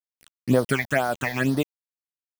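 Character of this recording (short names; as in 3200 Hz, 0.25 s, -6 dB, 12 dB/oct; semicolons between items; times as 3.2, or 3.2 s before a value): tremolo triangle 4.4 Hz, depth 45%; a quantiser's noise floor 6-bit, dither none; phasing stages 8, 2.1 Hz, lowest notch 360–2500 Hz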